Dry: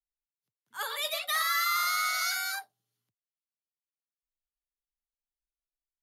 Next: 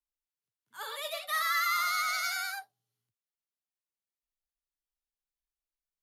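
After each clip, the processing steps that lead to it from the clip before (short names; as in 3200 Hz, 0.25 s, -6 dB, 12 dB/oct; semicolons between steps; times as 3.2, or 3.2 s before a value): vibrato 9.9 Hz 40 cents; harmonic-percussive split percussive -10 dB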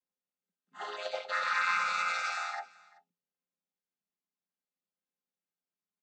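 chord vocoder minor triad, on F3; echo 0.383 s -23 dB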